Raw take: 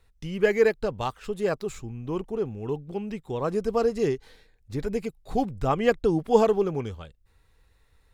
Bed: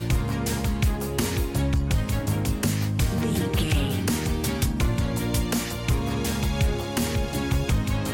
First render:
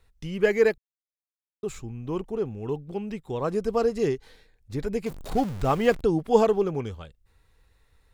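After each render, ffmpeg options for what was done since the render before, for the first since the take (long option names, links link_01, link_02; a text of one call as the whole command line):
ffmpeg -i in.wav -filter_complex "[0:a]asettb=1/sr,asplit=3[link_01][link_02][link_03];[link_01]atrim=end=5.064[link_04];[link_02]atrim=start=5.06:end=6.01,asetpts=PTS-STARTPTS,afade=type=in:duration=0.004:curve=qsin,afade=type=out:start_time=0.946:duration=0.004:curve=qsin,aeval=exprs='val(0)+0.5*0.02*sgn(val(0))':channel_layout=same[link_05];[link_03]atrim=start=6.006[link_06];[link_04][link_05]acrossfade=duration=0.004:curve1=hsin:curve2=qsin[link_07];[link_07][link_06]acrossfade=duration=0.004:curve1=qsin:curve2=hsin,asplit=3[link_08][link_09][link_10];[link_08]atrim=end=0.78,asetpts=PTS-STARTPTS,afade=type=out:start_time=0.776:duration=0.004:curve=hsin[link_11];[link_09]atrim=start=0.78:end=1.63,asetpts=PTS-STARTPTS,volume=0[link_12];[link_10]atrim=start=1.63,asetpts=PTS-STARTPTS,afade=type=in:duration=0.004:curve=hsin[link_13];[link_11][link_12][link_13]concat=n=3:v=0:a=1" out.wav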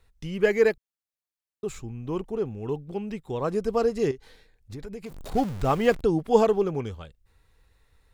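ffmpeg -i in.wav -filter_complex "[0:a]asettb=1/sr,asplit=3[link_01][link_02][link_03];[link_01]atrim=end=4.114[link_04];[link_02]atrim=start=4.11:end=5.34,asetpts=PTS-STARTPTS,afade=type=in:duration=0.004:curve=qsin,afade=type=out:start_time=1.226:duration=0.004:curve=qsin,acompressor=threshold=-35dB:ratio=4:attack=3.2:release=140:knee=1:detection=peak[link_05];[link_03]atrim=start=5.336[link_06];[link_04][link_05]acrossfade=duration=0.004:curve1=hsin:curve2=qsin[link_07];[link_07][link_06]acrossfade=duration=0.004:curve1=qsin:curve2=hsin" out.wav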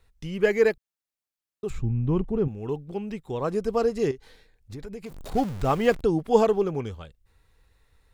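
ffmpeg -i in.wav -filter_complex "[0:a]asettb=1/sr,asplit=3[link_01][link_02][link_03];[link_01]atrim=end=1.704[link_04];[link_02]atrim=start=1.7:end=2.48,asetpts=PTS-STARTPTS,afade=type=in:duration=0.004:curve=qsin,afade=type=out:start_time=0.776:duration=0.004:curve=qsin,bass=frequency=250:gain=13,treble=frequency=4000:gain=-10[link_05];[link_03]atrim=start=2.476[link_06];[link_04][link_05]acrossfade=duration=0.004:curve1=hsin:curve2=qsin[link_07];[link_07][link_06]acrossfade=duration=0.004:curve1=qsin:curve2=hsin" out.wav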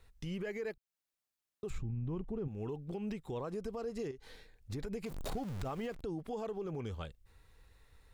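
ffmpeg -i in.wav -af "acompressor=threshold=-34dB:ratio=3,alimiter=level_in=7.5dB:limit=-24dB:level=0:latency=1:release=62,volume=-7.5dB" out.wav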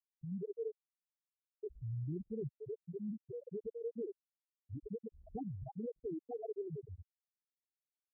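ffmpeg -i in.wav -af "afftfilt=real='re*gte(hypot(re,im),0.0891)':imag='im*gte(hypot(re,im),0.0891)':win_size=1024:overlap=0.75,highpass=86" out.wav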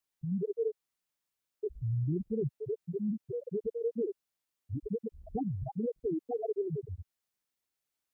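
ffmpeg -i in.wav -af "volume=8.5dB" out.wav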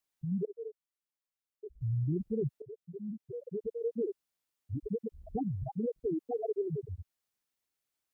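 ffmpeg -i in.wav -filter_complex "[0:a]asplit=4[link_01][link_02][link_03][link_04];[link_01]atrim=end=0.452[link_05];[link_02]atrim=start=0.448:end=1.812,asetpts=PTS-STARTPTS,volume=-10dB[link_06];[link_03]atrim=start=1.808:end=2.62,asetpts=PTS-STARTPTS,afade=type=out:start_time=0.808:duration=0.004:curve=hsin:silence=0.211349[link_07];[link_04]atrim=start=2.62,asetpts=PTS-STARTPTS,afade=type=in:duration=1.47:silence=0.211349[link_08];[link_05][link_06]acrossfade=duration=0.004:curve1=hsin:curve2=hsin[link_09];[link_07][link_08]concat=n=2:v=0:a=1[link_10];[link_09][link_10]acrossfade=duration=0.004:curve1=hsin:curve2=hsin" out.wav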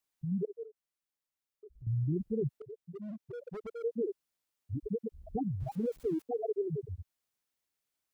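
ffmpeg -i in.wav -filter_complex "[0:a]asettb=1/sr,asplit=3[link_01][link_02][link_03];[link_01]atrim=end=0.634[link_04];[link_02]atrim=start=0.63:end=1.87,asetpts=PTS-STARTPTS,afade=type=in:duration=0.004:curve=qsin,afade=type=out:start_time=1.236:duration=0.004:curve=qsin,acompressor=threshold=-55dB:ratio=2:attack=3.2:release=140:knee=1:detection=peak[link_05];[link_03]atrim=start=1.866[link_06];[link_04][link_05]acrossfade=duration=0.004:curve1=hsin:curve2=qsin[link_07];[link_07][link_06]acrossfade=duration=0.004:curve1=qsin:curve2=hsin,asplit=3[link_08][link_09][link_10];[link_08]afade=type=out:start_time=2.55:duration=0.02[link_11];[link_09]asoftclip=type=hard:threshold=-39dB,afade=type=in:start_time=2.55:duration=0.02,afade=type=out:start_time=3.82:duration=0.02[link_12];[link_10]afade=type=in:start_time=3.82:duration=0.02[link_13];[link_11][link_12][link_13]amix=inputs=3:normalize=0,asettb=1/sr,asplit=3[link_14][link_15][link_16];[link_14]atrim=end=5.604[link_17];[link_15]atrim=start=5.6:end=6.22,asetpts=PTS-STARTPTS,afade=type=in:duration=0.004:curve=qsin,afade=type=out:start_time=0.616:duration=0.004:curve=qsin,aeval=exprs='val(0)+0.5*0.00251*sgn(val(0))':channel_layout=same[link_18];[link_16]atrim=start=6.216[link_19];[link_17][link_18]acrossfade=duration=0.004:curve1=hsin:curve2=qsin[link_20];[link_20][link_19]acrossfade=duration=0.004:curve1=qsin:curve2=hsin" out.wav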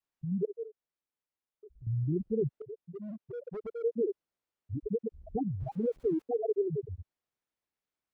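ffmpeg -i in.wav -af "lowpass=frequency=1800:poles=1,adynamicequalizer=threshold=0.00562:dfrequency=440:dqfactor=1.1:tfrequency=440:tqfactor=1.1:attack=5:release=100:ratio=0.375:range=2:mode=boostabove:tftype=bell" out.wav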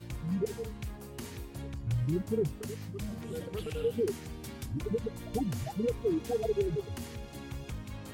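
ffmpeg -i in.wav -i bed.wav -filter_complex "[1:a]volume=-17dB[link_01];[0:a][link_01]amix=inputs=2:normalize=0" out.wav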